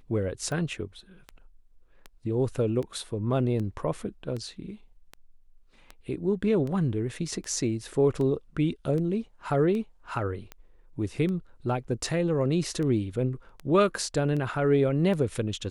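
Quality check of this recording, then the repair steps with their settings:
tick 78 rpm -24 dBFS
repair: de-click

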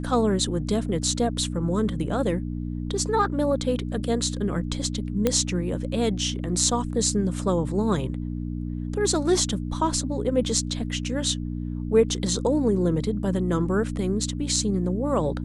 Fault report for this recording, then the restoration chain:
hum 60 Hz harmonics 5 -30 dBFS
5.27 pop -8 dBFS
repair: de-click; de-hum 60 Hz, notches 5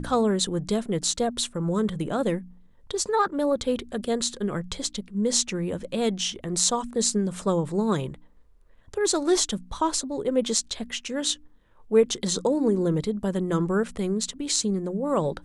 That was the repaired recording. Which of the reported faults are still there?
none

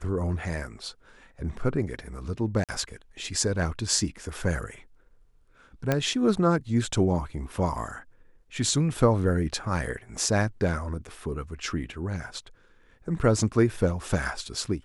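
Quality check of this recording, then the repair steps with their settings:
2.64–2.69 gap 47 ms
5.92 pop -10 dBFS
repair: de-click; interpolate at 2.64, 47 ms

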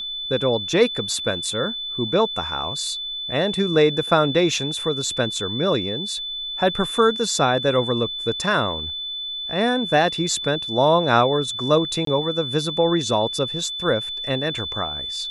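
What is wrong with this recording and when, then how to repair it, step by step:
tone 3500 Hz -27 dBFS
12.05–12.07 gap 23 ms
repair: notch 3500 Hz, Q 30; interpolate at 12.05, 23 ms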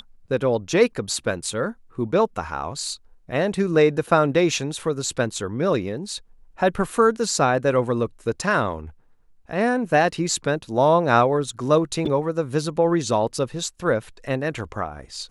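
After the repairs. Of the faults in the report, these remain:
none

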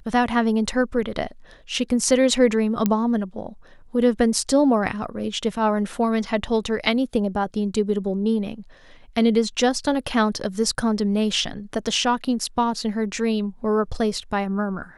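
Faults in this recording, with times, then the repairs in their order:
2.86 pop -7 dBFS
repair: de-click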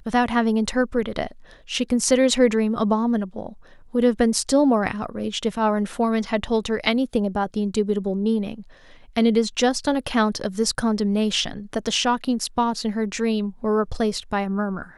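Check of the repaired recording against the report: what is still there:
none

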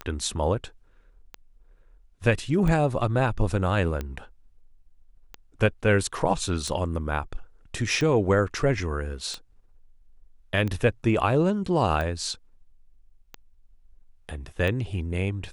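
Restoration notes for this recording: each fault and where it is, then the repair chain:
tick 45 rpm -18 dBFS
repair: de-click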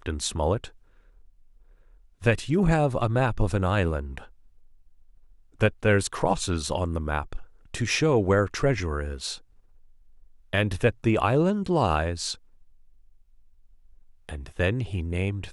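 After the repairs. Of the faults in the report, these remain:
none

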